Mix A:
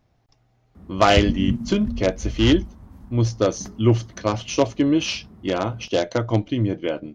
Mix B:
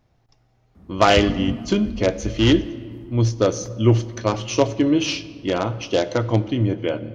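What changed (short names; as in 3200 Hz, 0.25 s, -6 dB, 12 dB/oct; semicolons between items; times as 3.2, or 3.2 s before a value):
background -3.5 dB; reverb: on, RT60 1.9 s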